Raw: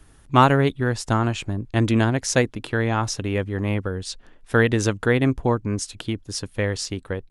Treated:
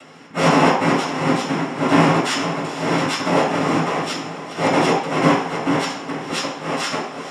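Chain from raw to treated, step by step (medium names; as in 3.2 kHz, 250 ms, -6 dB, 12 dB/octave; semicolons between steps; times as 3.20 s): bit-reversed sample order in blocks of 32 samples; treble shelf 4.4 kHz +5.5 dB; in parallel at 0 dB: compression 20:1, threshold -25 dBFS, peak gain reduction 21.5 dB; on the sum: slow attack 159 ms; upward compressor, threshold -31 dBFS; noise-vocoded speech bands 4; echo that smears into a reverb 493 ms, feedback 48%, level -11.5 dB; reverberation RT60 0.60 s, pre-delay 3 ms, DRR -6.5 dB; trim -8.5 dB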